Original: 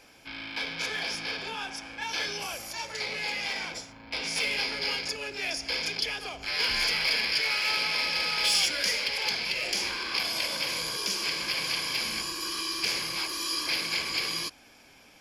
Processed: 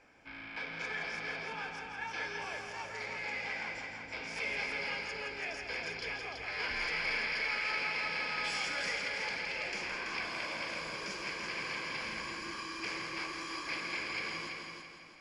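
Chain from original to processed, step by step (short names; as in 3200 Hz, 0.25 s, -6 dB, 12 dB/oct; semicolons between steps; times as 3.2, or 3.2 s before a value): steep low-pass 8800 Hz 36 dB/oct; resonant high shelf 2700 Hz -8.5 dB, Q 1.5; on a send: multi-head echo 0.166 s, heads first and second, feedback 47%, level -7 dB; on the sum: gain -6.5 dB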